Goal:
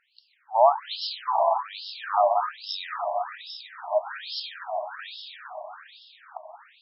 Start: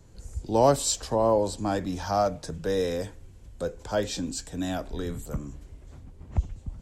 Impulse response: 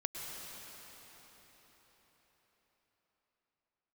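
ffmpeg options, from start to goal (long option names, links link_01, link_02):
-filter_complex "[0:a]asettb=1/sr,asplit=3[link_01][link_02][link_03];[link_01]atrim=end=2.624[link_04];[link_02]atrim=start=2.62:end=4.01,asetpts=PTS-STARTPTS,afade=type=in:duration=0.004:curve=qsin,afade=type=out:start_time=1.386:duration=0.004:curve=qsin,equalizer=frequency=5300:width=3.6:gain=14[link_05];[link_03]atrim=start=4.006[link_06];[link_04][link_05]acrossfade=duration=0.004:curve1=hsin:curve2=qsin[link_07];[link_07][link_06]acrossfade=duration=0.004:curve1=qsin:curve2=hsin[link_08];[1:a]atrim=start_sample=2205,asetrate=36603,aresample=44100[link_09];[link_08][link_09]afir=irnorm=-1:irlink=0,afftfilt=real='re*between(b*sr/1024,790*pow(3900/790,0.5+0.5*sin(2*PI*1.2*pts/sr))/1.41,790*pow(3900/790,0.5+0.5*sin(2*PI*1.2*pts/sr))*1.41)':imag='im*between(b*sr/1024,790*pow(3900/790,0.5+0.5*sin(2*PI*1.2*pts/sr))/1.41,790*pow(3900/790,0.5+0.5*sin(2*PI*1.2*pts/sr))*1.41)':win_size=1024:overlap=0.75,volume=6.5dB"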